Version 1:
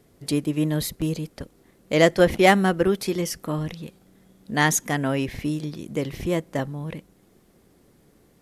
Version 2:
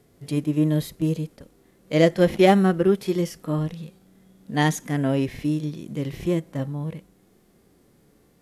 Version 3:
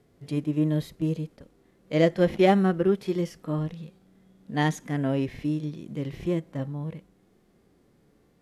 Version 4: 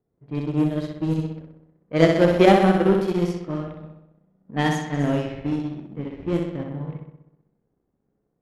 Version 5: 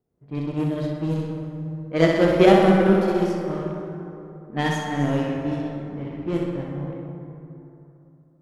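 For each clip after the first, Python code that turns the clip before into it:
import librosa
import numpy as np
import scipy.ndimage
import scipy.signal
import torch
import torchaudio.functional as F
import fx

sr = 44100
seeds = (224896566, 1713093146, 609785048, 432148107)

y1 = fx.hpss(x, sr, part='percussive', gain_db=-14)
y1 = y1 * librosa.db_to_amplitude(3.0)
y2 = fx.high_shelf(y1, sr, hz=7000.0, db=-11.0)
y2 = y2 * librosa.db_to_amplitude(-3.5)
y3 = fx.room_flutter(y2, sr, wall_m=10.8, rt60_s=1.2)
y3 = fx.power_curve(y3, sr, exponent=1.4)
y3 = fx.env_lowpass(y3, sr, base_hz=1100.0, full_db=-22.5)
y3 = y3 * librosa.db_to_amplitude(5.5)
y4 = fx.rev_plate(y3, sr, seeds[0], rt60_s=3.1, hf_ratio=0.45, predelay_ms=0, drr_db=2.5)
y4 = y4 * librosa.db_to_amplitude(-1.5)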